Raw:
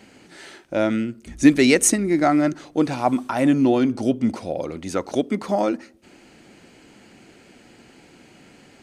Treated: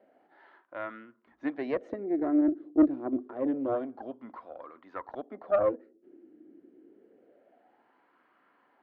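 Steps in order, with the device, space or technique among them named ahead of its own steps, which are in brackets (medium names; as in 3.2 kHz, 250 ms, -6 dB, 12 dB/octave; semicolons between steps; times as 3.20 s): wah-wah guitar rig (wah-wah 0.27 Hz 320–1100 Hz, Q 5.4; valve stage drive 20 dB, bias 0.75; cabinet simulation 75–3700 Hz, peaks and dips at 88 Hz -5 dB, 160 Hz -7 dB, 280 Hz +4 dB, 870 Hz -6 dB, 1.7 kHz +4 dB, 2.5 kHz -6 dB); trim +4.5 dB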